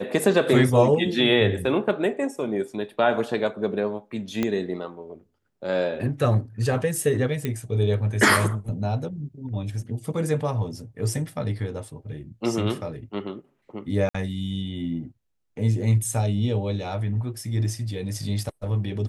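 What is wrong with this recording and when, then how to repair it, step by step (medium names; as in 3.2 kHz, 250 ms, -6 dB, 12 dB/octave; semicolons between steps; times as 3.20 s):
4.43 s: pop -11 dBFS
7.45 s: pop -14 dBFS
14.09–14.14 s: dropout 55 ms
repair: de-click; interpolate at 14.09 s, 55 ms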